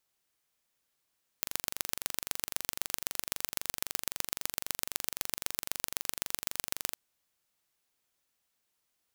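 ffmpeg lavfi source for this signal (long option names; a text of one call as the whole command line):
ffmpeg -f lavfi -i "aevalsrc='0.794*eq(mod(n,1853),0)*(0.5+0.5*eq(mod(n,5559),0))':duration=5.51:sample_rate=44100" out.wav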